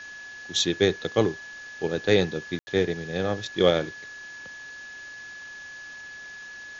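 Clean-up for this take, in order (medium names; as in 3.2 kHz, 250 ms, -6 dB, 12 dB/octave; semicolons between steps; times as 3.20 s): band-stop 1.7 kHz, Q 30; room tone fill 2.59–2.67 s; noise reduction 28 dB, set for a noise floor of -42 dBFS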